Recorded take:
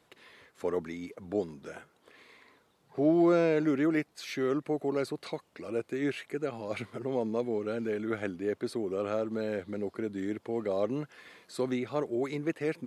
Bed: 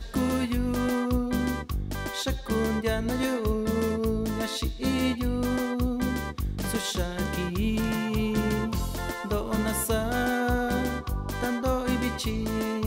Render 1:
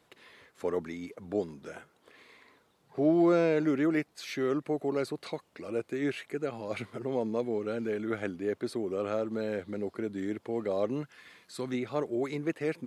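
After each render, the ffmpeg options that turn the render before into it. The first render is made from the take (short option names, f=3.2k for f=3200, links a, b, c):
-filter_complex "[0:a]asettb=1/sr,asplit=3[a][b][c];[a]atrim=end=11.024[d];[b]atrim=start=11.02:end=11.74,asetpts=PTS-STARTPTS,afade=t=in:d=0.004:c=qsin,afade=t=out:st=0.716:d=0.004:c=qsin,equalizer=f=500:w=0.73:g=-6.5[e];[c]atrim=start=11.736[f];[d][e]acrossfade=d=0.004:c1=hsin:c2=qsin[g];[g][f]acrossfade=d=0.004:c1=qsin:c2=hsin"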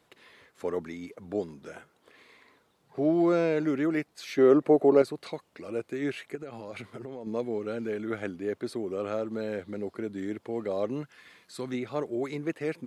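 -filter_complex "[0:a]asettb=1/sr,asplit=3[a][b][c];[a]atrim=end=4.384[d];[b]atrim=start=4.38:end=5.02,asetpts=PTS-STARTPTS,afade=t=in:d=0.004:c=qsin,afade=t=out:st=0.636:d=0.004:c=qsin,equalizer=f=500:w=0.46:g=11.5[e];[c]atrim=start=5.016[f];[d][e]acrossfade=d=0.004:c1=hsin:c2=qsin[g];[g][f]acrossfade=d=0.004:c1=qsin:c2=hsin,asettb=1/sr,asplit=3[h][i][j];[h]atrim=end=6.354[k];[i]atrim=start=6.35:end=7.27,asetpts=PTS-STARTPTS,afade=t=in:d=0.004:c=qsin,afade=t=out:st=0.916:d=0.004:c=qsin,acompressor=threshold=-35dB:ratio=10:attack=3.2:release=140:knee=1:detection=peak[l];[j]atrim=start=7.266[m];[k][l]acrossfade=d=0.004:c1=hsin:c2=qsin[n];[n][m]acrossfade=d=0.004:c1=qsin:c2=hsin"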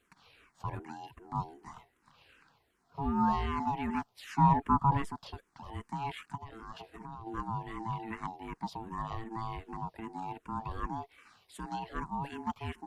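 -filter_complex "[0:a]aeval=exprs='val(0)*sin(2*PI*560*n/s)':c=same,asplit=2[a][b];[b]afreqshift=-2.6[c];[a][c]amix=inputs=2:normalize=1"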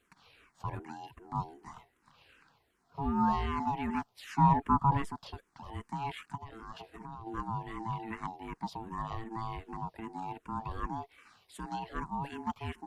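-af anull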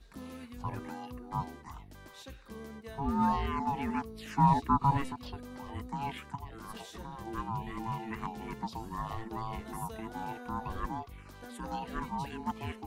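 -filter_complex "[1:a]volume=-19.5dB[a];[0:a][a]amix=inputs=2:normalize=0"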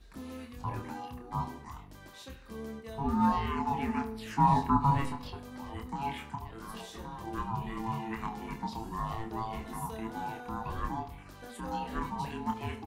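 -filter_complex "[0:a]asplit=2[a][b];[b]adelay=27,volume=-5dB[c];[a][c]amix=inputs=2:normalize=0,asplit=2[d][e];[e]adelay=72,lowpass=f=3.5k:p=1,volume=-13.5dB,asplit=2[f][g];[g]adelay=72,lowpass=f=3.5k:p=1,volume=0.5,asplit=2[h][i];[i]adelay=72,lowpass=f=3.5k:p=1,volume=0.5,asplit=2[j][k];[k]adelay=72,lowpass=f=3.5k:p=1,volume=0.5,asplit=2[l][m];[m]adelay=72,lowpass=f=3.5k:p=1,volume=0.5[n];[d][f][h][j][l][n]amix=inputs=6:normalize=0"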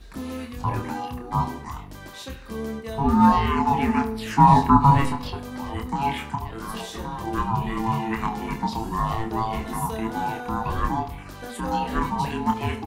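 -af "volume=10.5dB,alimiter=limit=-3dB:level=0:latency=1"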